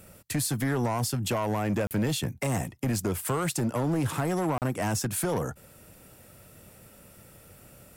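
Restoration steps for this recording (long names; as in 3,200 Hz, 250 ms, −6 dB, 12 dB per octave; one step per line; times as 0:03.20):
clipped peaks rebuilt −22.5 dBFS
repair the gap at 0:01.87/0:04.58, 38 ms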